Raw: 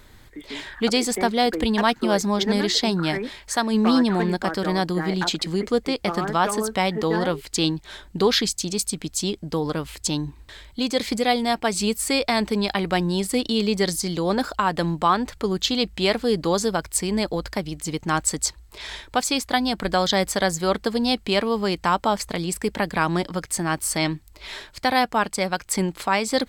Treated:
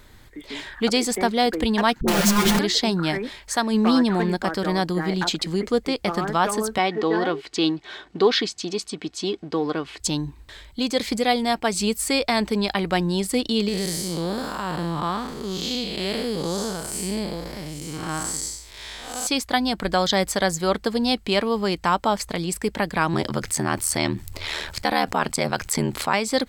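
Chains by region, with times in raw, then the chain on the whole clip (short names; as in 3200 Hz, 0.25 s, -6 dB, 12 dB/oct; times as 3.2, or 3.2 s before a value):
2.01–2.59 infinite clipping + comb 5.7 ms, depth 81% + dispersion highs, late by 69 ms, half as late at 530 Hz
6.78–10 G.711 law mismatch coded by mu + BPF 180–4100 Hz + comb 2.7 ms, depth 38%
13.68–19.27 time blur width 0.217 s + high shelf 5300 Hz +7.5 dB
23.13–26.14 ring modulator 39 Hz + fast leveller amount 50%
whole clip: dry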